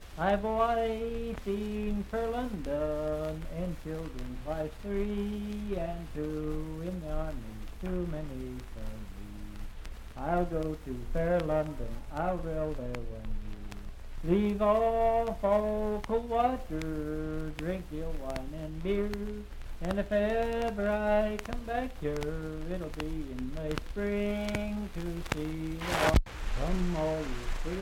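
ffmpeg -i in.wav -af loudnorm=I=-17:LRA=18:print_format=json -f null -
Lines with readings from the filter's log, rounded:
"input_i" : "-33.1",
"input_tp" : "-8.8",
"input_lra" : "6.2",
"input_thresh" : "-43.4",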